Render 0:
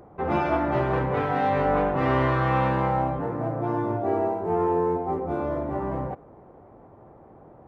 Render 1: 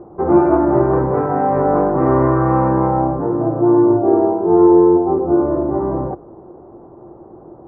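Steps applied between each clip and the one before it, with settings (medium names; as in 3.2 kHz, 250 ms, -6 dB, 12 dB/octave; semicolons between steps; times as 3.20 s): low-pass 1.3 kHz 24 dB/octave; peaking EQ 350 Hz +12.5 dB 0.29 oct; hum notches 50/100 Hz; trim +6.5 dB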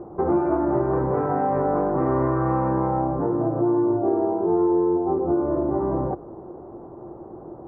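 compression 3:1, threshold -21 dBFS, peak gain reduction 11 dB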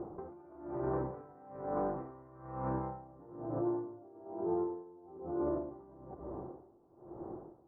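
peak limiter -22 dBFS, peak gain reduction 11 dB; reverberation RT60 3.1 s, pre-delay 119 ms, DRR 11.5 dB; logarithmic tremolo 1.1 Hz, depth 23 dB; trim -4.5 dB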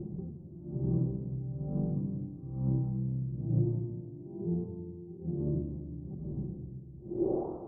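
low-pass sweep 170 Hz -> 1.1 kHz, 6.98–7.55 s; simulated room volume 1300 m³, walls mixed, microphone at 1.1 m; trim +8 dB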